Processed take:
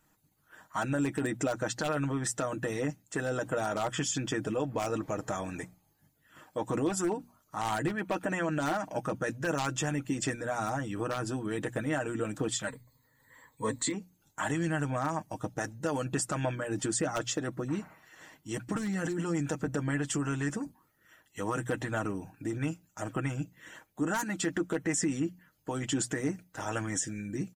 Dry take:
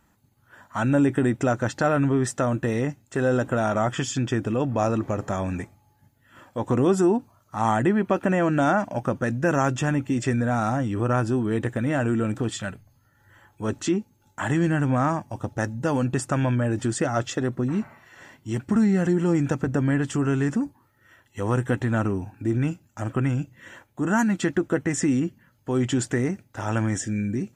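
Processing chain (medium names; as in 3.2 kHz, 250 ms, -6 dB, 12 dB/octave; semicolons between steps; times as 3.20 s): one-sided wavefolder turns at -14 dBFS; treble shelf 5 kHz +7.5 dB; hum notches 60/120/180/240 Hz; comb 6.4 ms, depth 59%; harmonic-percussive split harmonic -9 dB; 12.67–13.94 s: rippled EQ curve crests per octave 1, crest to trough 16 dB; peak limiter -17.5 dBFS, peak gain reduction 8.5 dB; trim -3.5 dB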